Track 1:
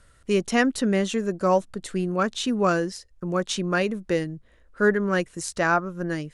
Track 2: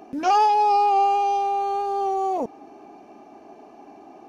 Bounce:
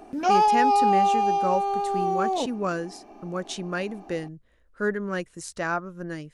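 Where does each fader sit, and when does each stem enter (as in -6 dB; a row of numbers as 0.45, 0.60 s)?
-6.0, -1.5 dB; 0.00, 0.00 s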